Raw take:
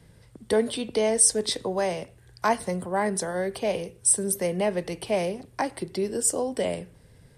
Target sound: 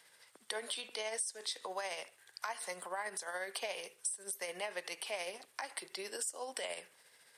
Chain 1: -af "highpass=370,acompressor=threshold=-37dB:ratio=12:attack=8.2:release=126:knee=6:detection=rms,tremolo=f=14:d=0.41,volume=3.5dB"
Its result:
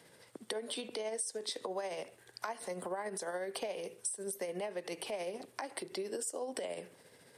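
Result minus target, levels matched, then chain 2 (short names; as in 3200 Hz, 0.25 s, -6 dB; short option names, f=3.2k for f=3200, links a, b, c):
500 Hz band +4.5 dB
-af "highpass=1.1k,acompressor=threshold=-37dB:ratio=12:attack=8.2:release=126:knee=6:detection=rms,tremolo=f=14:d=0.41,volume=3.5dB"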